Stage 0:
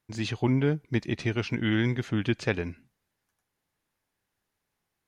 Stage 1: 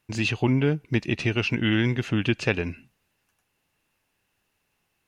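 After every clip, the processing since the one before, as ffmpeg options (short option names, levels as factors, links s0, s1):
-filter_complex "[0:a]equalizer=f=2700:w=7.8:g=12.5,asplit=2[s0][s1];[s1]acompressor=threshold=0.0251:ratio=6,volume=1.12[s2];[s0][s2]amix=inputs=2:normalize=0"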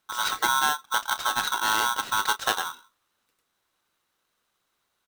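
-filter_complex "[0:a]asplit=2[s0][s1];[s1]adelay=29,volume=0.251[s2];[s0][s2]amix=inputs=2:normalize=0,aeval=exprs='val(0)*sgn(sin(2*PI*1200*n/s))':c=same,volume=0.794"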